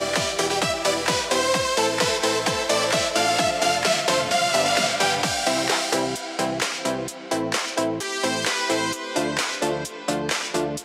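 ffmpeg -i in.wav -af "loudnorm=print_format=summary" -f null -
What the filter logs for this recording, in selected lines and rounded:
Input Integrated:    -22.6 LUFS
Input True Peak:      -6.8 dBTP
Input LRA:             4.1 LU
Input Threshold:     -32.6 LUFS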